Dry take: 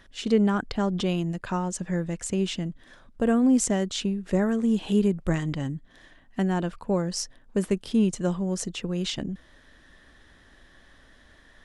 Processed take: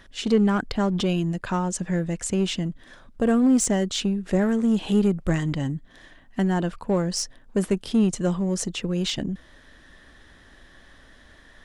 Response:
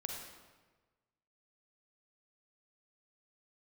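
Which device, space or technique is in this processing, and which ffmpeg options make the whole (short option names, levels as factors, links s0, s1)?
parallel distortion: -filter_complex "[0:a]asplit=2[s0][s1];[s1]asoftclip=type=hard:threshold=0.0531,volume=0.531[s2];[s0][s2]amix=inputs=2:normalize=0"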